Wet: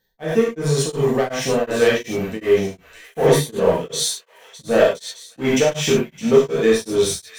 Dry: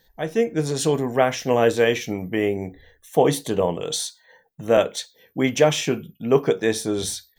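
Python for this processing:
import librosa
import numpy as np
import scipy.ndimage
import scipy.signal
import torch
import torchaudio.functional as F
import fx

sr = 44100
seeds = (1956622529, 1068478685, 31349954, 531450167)

p1 = fx.leveller(x, sr, passes=2)
p2 = p1 + fx.echo_wet_highpass(p1, sr, ms=612, feedback_pct=48, hz=1800.0, wet_db=-12.5, dry=0)
p3 = fx.rev_gated(p2, sr, seeds[0], gate_ms=130, shape='flat', drr_db=-5.0)
p4 = p3 * np.abs(np.cos(np.pi * 2.7 * np.arange(len(p3)) / sr))
y = p4 * 10.0 ** (-7.0 / 20.0)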